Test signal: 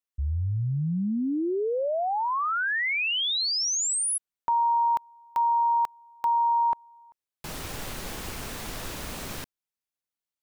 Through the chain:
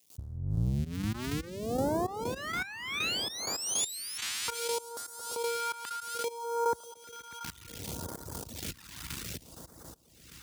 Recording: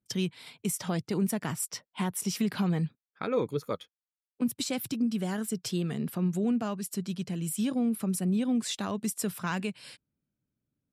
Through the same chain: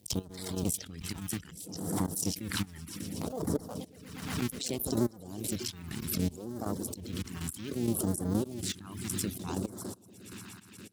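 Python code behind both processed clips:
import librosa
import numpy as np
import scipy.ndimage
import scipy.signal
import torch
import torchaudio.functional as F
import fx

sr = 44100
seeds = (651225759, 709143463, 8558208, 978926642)

y = fx.cycle_switch(x, sr, every=2, mode='muted')
y = fx.echo_swell(y, sr, ms=119, loudest=5, wet_db=-16.0)
y = fx.step_gate(y, sr, bpm=160, pattern='.x....xxx..x.', floor_db=-12.0, edge_ms=4.5)
y = fx.dereverb_blind(y, sr, rt60_s=0.53)
y = scipy.signal.sosfilt(scipy.signal.butter(4, 55.0, 'highpass', fs=sr, output='sos'), y)
y = fx.phaser_stages(y, sr, stages=2, low_hz=510.0, high_hz=2600.0, hz=0.64, feedback_pct=20)
y = fx.pre_swell(y, sr, db_per_s=49.0)
y = F.gain(torch.from_numpy(y), 1.5).numpy()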